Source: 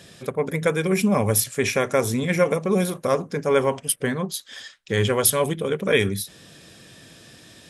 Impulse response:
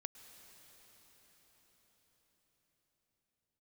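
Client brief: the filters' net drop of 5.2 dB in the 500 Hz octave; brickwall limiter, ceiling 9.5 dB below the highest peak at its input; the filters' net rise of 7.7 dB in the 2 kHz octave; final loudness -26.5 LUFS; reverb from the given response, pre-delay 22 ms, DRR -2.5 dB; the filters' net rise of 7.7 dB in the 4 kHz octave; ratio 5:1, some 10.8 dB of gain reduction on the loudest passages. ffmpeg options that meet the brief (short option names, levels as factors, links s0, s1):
-filter_complex "[0:a]equalizer=f=500:t=o:g=-6.5,equalizer=f=2000:t=o:g=7.5,equalizer=f=4000:t=o:g=7.5,acompressor=threshold=0.0708:ratio=5,alimiter=limit=0.106:level=0:latency=1,asplit=2[s0][s1];[1:a]atrim=start_sample=2205,adelay=22[s2];[s1][s2]afir=irnorm=-1:irlink=0,volume=2.11[s3];[s0][s3]amix=inputs=2:normalize=0,volume=1.06"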